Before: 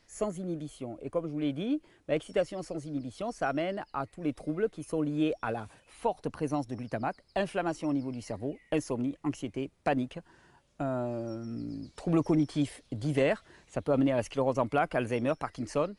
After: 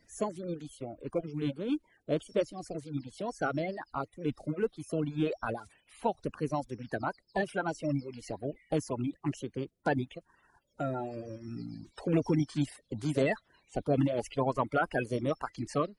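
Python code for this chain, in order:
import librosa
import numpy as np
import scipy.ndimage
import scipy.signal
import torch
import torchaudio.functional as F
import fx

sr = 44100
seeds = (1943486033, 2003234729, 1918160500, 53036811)

y = fx.spec_quant(x, sr, step_db=30)
y = fx.dereverb_blind(y, sr, rt60_s=0.88)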